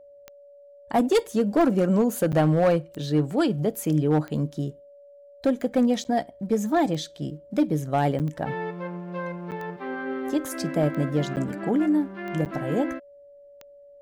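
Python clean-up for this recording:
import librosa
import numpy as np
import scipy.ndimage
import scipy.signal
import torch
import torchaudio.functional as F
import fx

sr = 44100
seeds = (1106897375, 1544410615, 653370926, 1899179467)

y = fx.fix_declip(x, sr, threshold_db=-14.5)
y = fx.fix_declick_ar(y, sr, threshold=10.0)
y = fx.notch(y, sr, hz=570.0, q=30.0)
y = fx.fix_interpolate(y, sr, at_s=(2.32, 6.04, 8.19, 9.51, 11.36, 12.45), length_ms=8.9)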